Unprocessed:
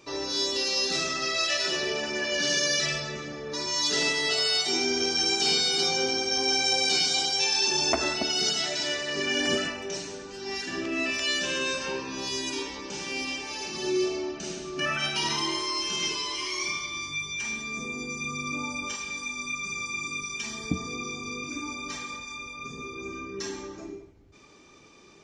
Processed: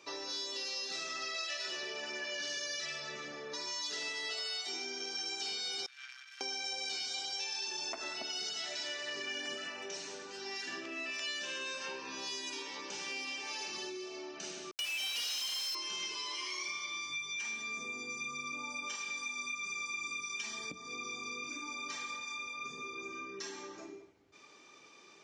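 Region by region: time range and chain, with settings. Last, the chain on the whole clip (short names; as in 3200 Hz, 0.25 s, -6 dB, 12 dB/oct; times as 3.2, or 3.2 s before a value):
5.86–6.41 tape spacing loss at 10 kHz 39 dB + power-law curve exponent 2 + steep high-pass 1400 Hz
14.71–15.75 steep high-pass 2400 Hz 96 dB/oct + companded quantiser 2-bit
whole clip: low shelf 100 Hz +7.5 dB; compressor, threshold -34 dBFS; weighting filter A; gain -3 dB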